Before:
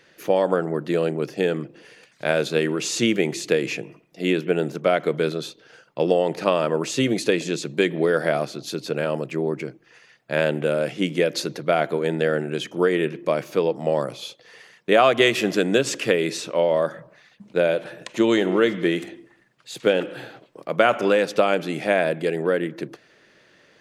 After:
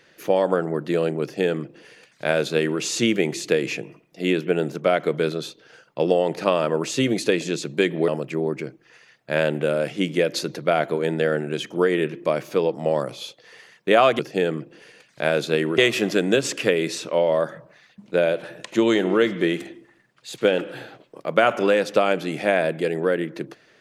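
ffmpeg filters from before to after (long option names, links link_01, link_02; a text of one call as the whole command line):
ffmpeg -i in.wav -filter_complex "[0:a]asplit=4[link_01][link_02][link_03][link_04];[link_01]atrim=end=8.082[link_05];[link_02]atrim=start=9.088:end=15.202[link_06];[link_03]atrim=start=1.218:end=2.812[link_07];[link_04]atrim=start=15.198[link_08];[link_05][link_06]acrossfade=duration=0.004:curve1=hsin:curve2=hsin[link_09];[link_09][link_07]acrossfade=duration=0.004:curve1=hsin:curve2=hsin[link_10];[link_10][link_08]acrossfade=duration=0.004:curve1=hsin:curve2=hsin" out.wav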